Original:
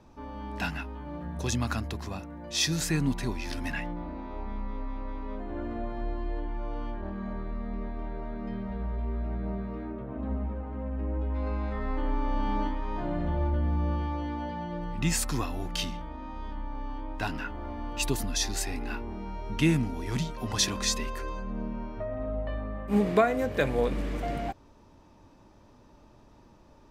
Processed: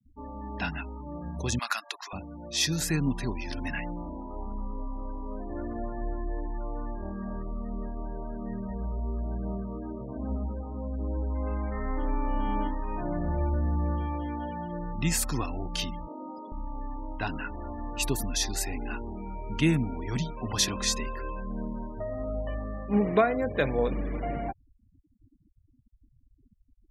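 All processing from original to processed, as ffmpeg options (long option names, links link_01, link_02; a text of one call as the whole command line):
ffmpeg -i in.wav -filter_complex "[0:a]asettb=1/sr,asplit=3[link_01][link_02][link_03];[link_01]atrim=end=1.594[link_04];[link_02]atrim=start=1.59:end=2.13,asetpts=PTS-STARTPTS,afade=type=in:duration=0.004:curve=qsin,afade=type=out:start_time=0.536:duration=0.004:curve=qsin,highpass=1200,acontrast=72[link_05];[link_03]atrim=start=2.126[link_06];[link_04][link_05]acrossfade=duration=0.004:curve1=hsin:curve2=qsin[link_07];[link_07][link_06]acrossfade=duration=0.004:curve1=qsin:curve2=hsin,asettb=1/sr,asplit=3[link_08][link_09][link_10];[link_08]atrim=end=16.074[link_11];[link_09]atrim=start=16.07:end=16.52,asetpts=PTS-STARTPTS,afade=type=in:duration=0.004:curve=qsin,afade=type=out:start_time=0.446:duration=0.004:curve=qsin,acrusher=bits=7:mix=0:aa=0.5,highpass=frequency=130:width=0.5412,highpass=frequency=130:width=1.3066,equalizer=frequency=190:width_type=q:width=4:gain=-6,equalizer=frequency=340:width_type=q:width=4:gain=7,equalizer=frequency=560:width_type=q:width=4:gain=7,equalizer=frequency=1800:width_type=q:width=4:gain=-7,equalizer=frequency=5100:width_type=q:width=4:gain=9,lowpass=frequency=8400:width=0.5412,lowpass=frequency=8400:width=1.3066[link_12];[link_10]atrim=start=16.516[link_13];[link_11][link_12]acrossfade=duration=0.004:curve1=hsin:curve2=qsin[link_14];[link_14][link_13]acrossfade=duration=0.004:curve1=qsin:curve2=hsin,equalizer=frequency=12000:width_type=o:width=0.54:gain=5,afftfilt=real='re*gte(hypot(re,im),0.0112)':imag='im*gte(hypot(re,im),0.0112)':win_size=1024:overlap=0.75" out.wav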